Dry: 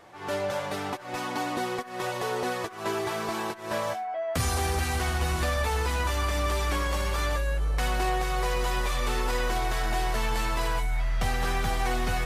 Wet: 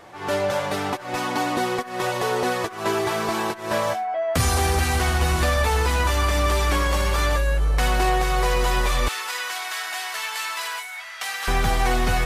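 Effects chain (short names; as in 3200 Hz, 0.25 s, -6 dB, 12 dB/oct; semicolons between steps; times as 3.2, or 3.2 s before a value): 9.08–11.48 HPF 1400 Hz 12 dB/oct; gain +6.5 dB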